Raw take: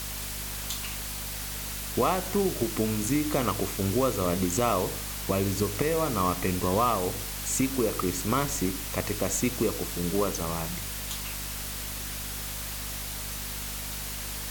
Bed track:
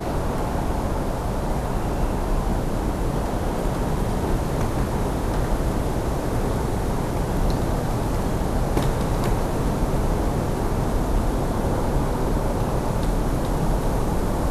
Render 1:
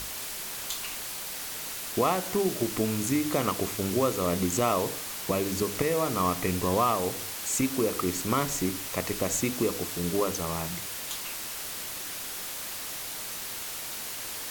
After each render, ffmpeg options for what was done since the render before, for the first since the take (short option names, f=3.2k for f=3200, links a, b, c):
-af "bandreject=f=50:t=h:w=6,bandreject=f=100:t=h:w=6,bandreject=f=150:t=h:w=6,bandreject=f=200:t=h:w=6,bandreject=f=250:t=h:w=6"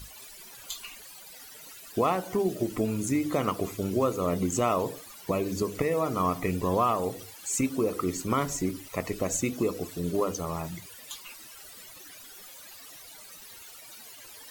-af "afftdn=nr=16:nf=-37"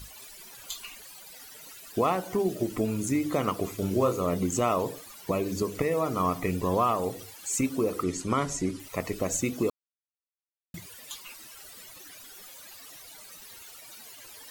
-filter_complex "[0:a]asettb=1/sr,asplit=3[a][b][c];[a]atrim=end=3.754[d];[b]atrim=start=3.75:end=4.22,asetpts=PTS-STARTPTS,afade=t=in:d=0.004:c=qsin,afade=t=out:st=0.466:d=0.004:c=qsin,asplit=2[e][f];[f]adelay=32,volume=-7dB[g];[e][g]amix=inputs=2:normalize=0,atrim=end_sample=20727[h];[c]atrim=start=4.216[i];[d][h]acrossfade=d=0.004:c1=hsin:c2=qsin[j];[j][i]acrossfade=d=0.004:c1=qsin:c2=hsin,asettb=1/sr,asplit=3[k][l][m];[k]atrim=end=8.034[n];[l]atrim=start=8.03:end=8.8,asetpts=PTS-STARTPTS,afade=t=in:d=0.004:c=qsin,afade=t=out:st=0.766:d=0.004:c=qsin,lowpass=f=10k:w=0.5412,lowpass=f=10k:w=1.3066[o];[m]atrim=start=8.796[p];[n][o]acrossfade=d=0.004:c1=hsin:c2=qsin[q];[q][p]acrossfade=d=0.004:c1=qsin:c2=hsin,asplit=3[r][s][t];[r]atrim=end=9.7,asetpts=PTS-STARTPTS,afade=t=out:st=9.696:d=0.004:c=hsin[u];[s]atrim=start=9.7:end=10.74,asetpts=PTS-STARTPTS,volume=0[v];[t]atrim=start=10.74,asetpts=PTS-STARTPTS,afade=t=in:d=0.004:c=hsin[w];[u][v][w]concat=n=3:v=0:a=1"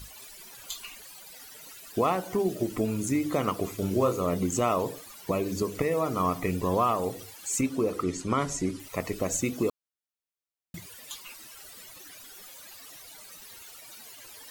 -filter_complex "[0:a]asettb=1/sr,asplit=3[a][b][c];[a]atrim=end=7.614[d];[b]atrim=start=7.61:end=8.4,asetpts=PTS-STARTPTS,afade=t=in:d=0.004:c=qsin,afade=t=out:st=0.786:d=0.004:c=qsin,highshelf=f=10k:g=-8.5[e];[c]atrim=start=8.396[f];[d][e]acrossfade=d=0.004:c1=hsin:c2=qsin[g];[g][f]acrossfade=d=0.004:c1=qsin:c2=hsin"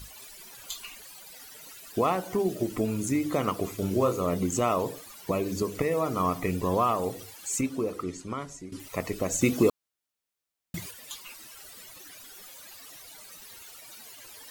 -filter_complex "[0:a]asettb=1/sr,asplit=3[a][b][c];[a]atrim=end=9.414[d];[b]atrim=start=9.41:end=10.91,asetpts=PTS-STARTPTS,afade=t=in:d=0.004:c=qsin,afade=t=out:st=1.496:d=0.004:c=qsin,acontrast=44[e];[c]atrim=start=10.906[f];[d][e]acrossfade=d=0.004:c1=hsin:c2=qsin[g];[g][f]acrossfade=d=0.004:c1=qsin:c2=hsin,asplit=2[h][i];[h]atrim=end=8.72,asetpts=PTS-STARTPTS,afade=t=out:st=7.4:d=1.32:silence=0.16788[j];[i]atrim=start=8.72,asetpts=PTS-STARTPTS,afade=t=in:d=0.004:c=hsin:silence=0.16788[k];[j][k]concat=n=2:v=0:a=1"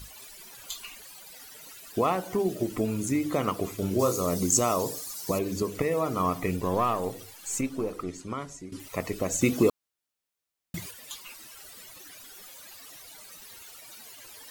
-filter_complex "[0:a]asettb=1/sr,asplit=3[a][b][c];[a]atrim=end=3.994[d];[b]atrim=start=3.99:end=5.39,asetpts=PTS-STARTPTS,afade=t=in:d=0.004:c=qsin,afade=t=out:st=1.396:d=0.004:c=qsin,highshelf=f=3.9k:t=q:w=1.5:g=9[e];[c]atrim=start=5.386[f];[d][e]acrossfade=d=0.004:c1=hsin:c2=qsin[g];[g][f]acrossfade=d=0.004:c1=qsin:c2=hsin,asettb=1/sr,asplit=3[h][i][j];[h]atrim=end=6.564[k];[i]atrim=start=6.56:end=8.2,asetpts=PTS-STARTPTS,afade=t=in:d=0.004:c=qsin,afade=t=out:st=1.636:d=0.004:c=qsin,aeval=exprs='if(lt(val(0),0),0.708*val(0),val(0))':c=same[l];[j]atrim=start=8.196[m];[k][l]acrossfade=d=0.004:c1=hsin:c2=qsin[n];[n][m]acrossfade=d=0.004:c1=qsin:c2=hsin"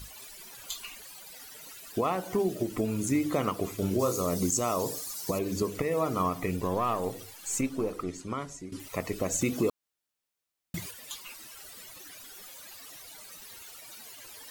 -af "alimiter=limit=-17dB:level=0:latency=1:release=226"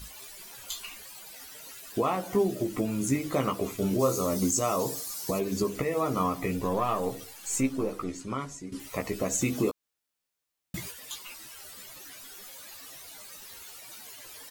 -filter_complex "[0:a]asplit=2[a][b];[b]adelay=15,volume=-5dB[c];[a][c]amix=inputs=2:normalize=0"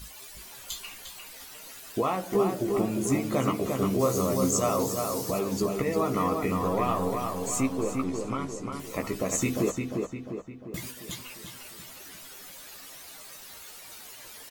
-filter_complex "[0:a]asplit=2[a][b];[b]adelay=351,lowpass=f=3.1k:p=1,volume=-4dB,asplit=2[c][d];[d]adelay=351,lowpass=f=3.1k:p=1,volume=0.53,asplit=2[e][f];[f]adelay=351,lowpass=f=3.1k:p=1,volume=0.53,asplit=2[g][h];[h]adelay=351,lowpass=f=3.1k:p=1,volume=0.53,asplit=2[i][j];[j]adelay=351,lowpass=f=3.1k:p=1,volume=0.53,asplit=2[k][l];[l]adelay=351,lowpass=f=3.1k:p=1,volume=0.53,asplit=2[m][n];[n]adelay=351,lowpass=f=3.1k:p=1,volume=0.53[o];[a][c][e][g][i][k][m][o]amix=inputs=8:normalize=0"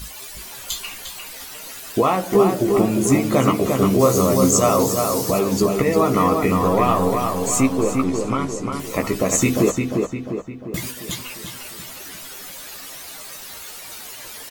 -af "volume=9.5dB"